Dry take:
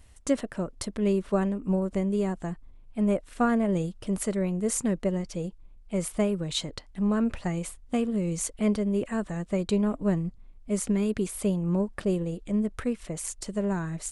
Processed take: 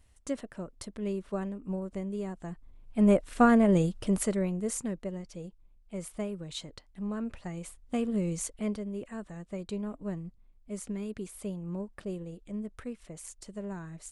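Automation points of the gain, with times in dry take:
2.37 s -8.5 dB
3.07 s +3 dB
3.99 s +3 dB
5.05 s -9.5 dB
7.48 s -9.5 dB
8.19 s -1.5 dB
8.91 s -10.5 dB

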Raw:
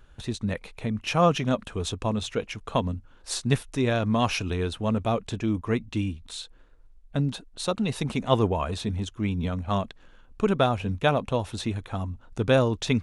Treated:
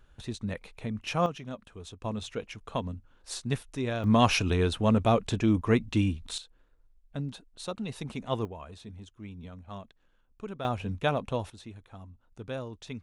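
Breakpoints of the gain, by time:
-5.5 dB
from 1.26 s -14.5 dB
from 2.04 s -7 dB
from 4.04 s +2 dB
from 6.38 s -9 dB
from 8.45 s -16 dB
from 10.65 s -5 dB
from 11.5 s -16 dB

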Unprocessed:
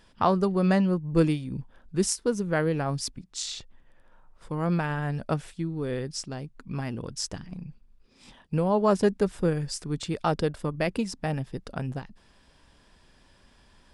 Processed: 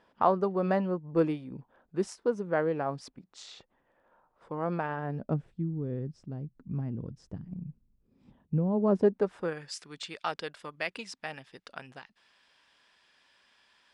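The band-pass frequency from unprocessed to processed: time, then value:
band-pass, Q 0.74
4.94 s 690 Hz
5.47 s 140 Hz
8.71 s 140 Hz
9.18 s 630 Hz
9.76 s 2500 Hz

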